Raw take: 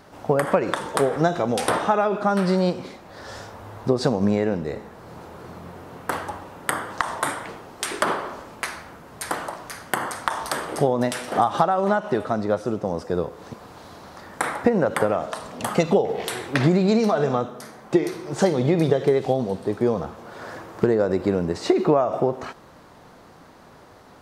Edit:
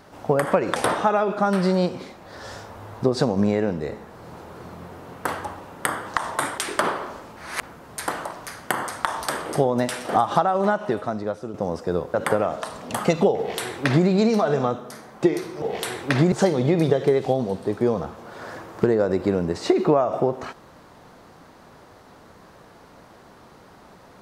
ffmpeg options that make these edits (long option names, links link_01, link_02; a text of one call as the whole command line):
ffmpeg -i in.wav -filter_complex "[0:a]asplit=9[link_01][link_02][link_03][link_04][link_05][link_06][link_07][link_08][link_09];[link_01]atrim=end=0.762[link_10];[link_02]atrim=start=1.598:end=7.422[link_11];[link_03]atrim=start=7.808:end=8.602[link_12];[link_04]atrim=start=8.598:end=8.862,asetpts=PTS-STARTPTS,areverse[link_13];[link_05]atrim=start=8.858:end=12.77,asetpts=PTS-STARTPTS,afade=type=out:start_time=3.122:duration=0.79:silence=0.354813[link_14];[link_06]atrim=start=12.77:end=13.372,asetpts=PTS-STARTPTS,afade=type=in:duration=0.004:curve=hsin:silence=0.354813[link_15];[link_07]atrim=start=14.838:end=18.322[link_16];[link_08]atrim=start=16.068:end=16.772[link_17];[link_09]atrim=start=18.318[link_18];[link_10][link_11]acrossfade=duration=0.004:curve1=hsin:curve2=hsin[link_19];[link_19][link_12]acrossfade=duration=0.004:curve1=hsin:curve2=hsin[link_20];[link_20][link_13]acrossfade=duration=0.004:curve1=hsin:curve2=hsin[link_21];[link_14][link_15]concat=n=2:v=0:a=1[link_22];[link_21][link_22]acrossfade=duration=0.004:curve1=hsin:curve2=hsin[link_23];[link_23][link_16]acrossfade=duration=0.004:curve1=hsin:curve2=hsin[link_24];[link_24][link_17]acrossfade=duration=0.004:curve1=hsin:curve2=hsin[link_25];[link_25][link_18]acrossfade=duration=0.004:curve1=hsin:curve2=hsin" out.wav